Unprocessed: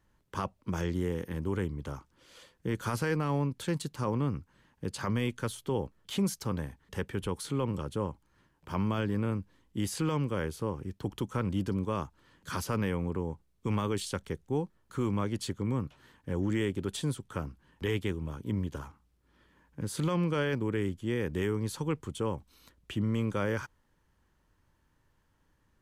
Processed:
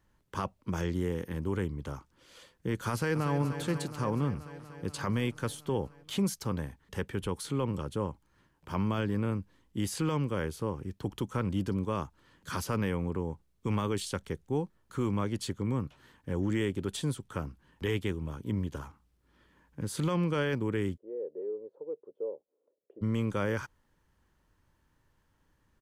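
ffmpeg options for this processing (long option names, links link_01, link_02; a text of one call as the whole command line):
ffmpeg -i in.wav -filter_complex "[0:a]asplit=2[link_01][link_02];[link_02]afade=type=in:start_time=2.91:duration=0.01,afade=type=out:start_time=3.39:duration=0.01,aecho=0:1:240|480|720|960|1200|1440|1680|1920|2160|2400|2640|2880:0.316228|0.252982|0.202386|0.161909|0.129527|0.103622|0.0828972|0.0663178|0.0530542|0.0424434|0.0339547|0.0271638[link_03];[link_01][link_03]amix=inputs=2:normalize=0,asplit=3[link_04][link_05][link_06];[link_04]afade=type=out:start_time=20.96:duration=0.02[link_07];[link_05]asuperpass=centerf=490:order=4:qfactor=2.6,afade=type=in:start_time=20.96:duration=0.02,afade=type=out:start_time=23.01:duration=0.02[link_08];[link_06]afade=type=in:start_time=23.01:duration=0.02[link_09];[link_07][link_08][link_09]amix=inputs=3:normalize=0" out.wav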